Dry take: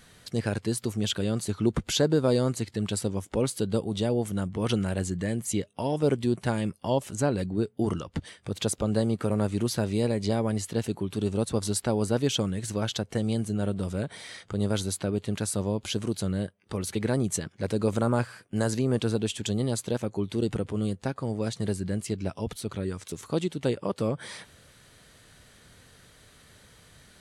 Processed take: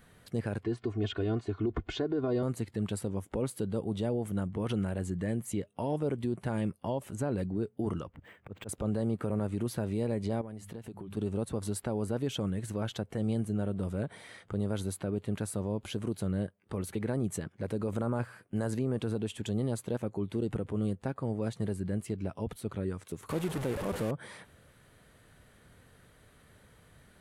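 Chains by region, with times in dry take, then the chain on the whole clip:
0.63–2.43 Gaussian blur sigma 1.8 samples + comb 2.8 ms, depth 87%
8.08–8.69 resonant high shelf 3300 Hz -7.5 dB, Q 1.5 + auto swell 0.126 s + decimation joined by straight lines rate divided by 4×
10.41–11.17 notches 50/100/150/200 Hz + compressor 16:1, threshold -35 dBFS
23.29–24.11 delta modulation 64 kbps, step -26 dBFS + de-esser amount 55%
whole clip: bell 5400 Hz -12 dB 1.8 oct; limiter -20.5 dBFS; gain -2.5 dB

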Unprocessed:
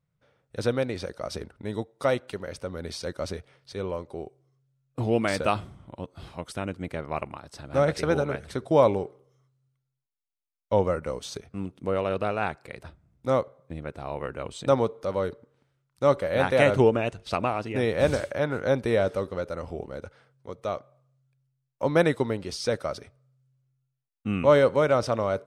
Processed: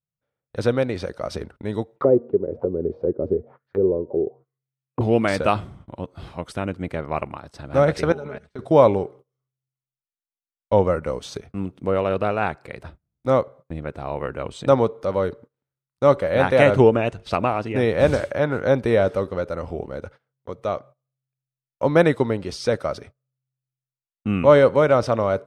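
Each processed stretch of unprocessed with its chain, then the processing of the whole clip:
1.96–5.01 HPF 78 Hz + de-hum 234.5 Hz, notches 8 + envelope low-pass 400–2600 Hz down, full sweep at -31.5 dBFS
8.12–8.59 LPF 8800 Hz 24 dB/oct + comb 4.8 ms, depth 50% + level quantiser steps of 19 dB
whole clip: high shelf 3800 Hz -7.5 dB; gate -48 dBFS, range -22 dB; gain +5.5 dB

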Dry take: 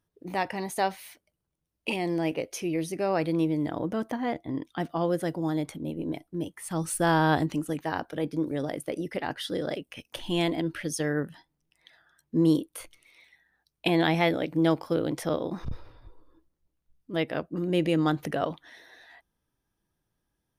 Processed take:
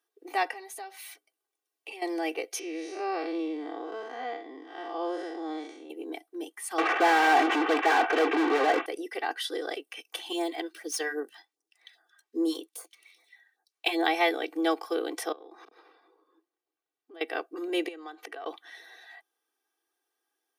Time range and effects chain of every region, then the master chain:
0.53–2.02 comb 7.4 ms, depth 38% + de-hum 50.72 Hz, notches 6 + compressor 4:1, threshold -42 dBFS
2.59–5.9 time blur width 0.16 s + LPF 7000 Hz 24 dB/oct
6.78–8.86 CVSD 16 kbps + overdrive pedal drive 41 dB, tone 1100 Hz, clips at -13 dBFS
10.32–14.06 median filter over 3 samples + phaser stages 2, 2.5 Hz, lowest notch 100–2900 Hz
15.32–17.21 HPF 74 Hz + compressor 8:1, threshold -41 dBFS + high shelf 4200 Hz -10 dB
17.88–18.46 HPF 310 Hz + high shelf 7700 Hz -12 dB + compressor 5:1, threshold -38 dBFS
whole clip: Bessel high-pass 540 Hz, order 8; comb 2.6 ms, depth 89%

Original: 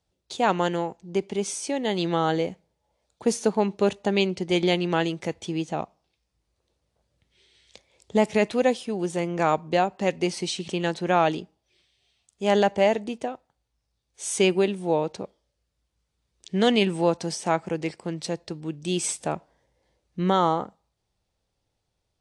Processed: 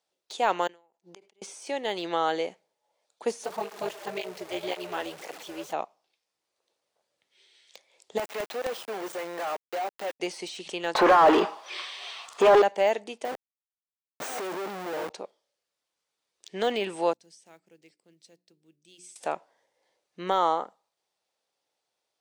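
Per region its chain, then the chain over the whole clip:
0.67–1.42 flipped gate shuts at -30 dBFS, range -35 dB + sustainer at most 150 dB/s
3.44–5.73 zero-crossing step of -28 dBFS + AM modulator 250 Hz, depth 85% + tape flanging out of phase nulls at 1.9 Hz, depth 5.7 ms
8.18–10.2 HPF 810 Hz 6 dB/oct + companded quantiser 2-bit
10.95–12.62 bell 1100 Hz +13.5 dB 0.63 oct + negative-ratio compressor -18 dBFS, ratio -0.5 + overdrive pedal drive 37 dB, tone 2400 Hz, clips at -3 dBFS
13.25–15.1 reverse delay 0.566 s, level -5.5 dB + Schmitt trigger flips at -36 dBFS
17.13–19.16 block floating point 7-bit + passive tone stack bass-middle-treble 10-0-1 + notches 60/120/180/240/300/360/420 Hz
whole clip: HPF 500 Hz 12 dB/oct; de-esser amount 90%

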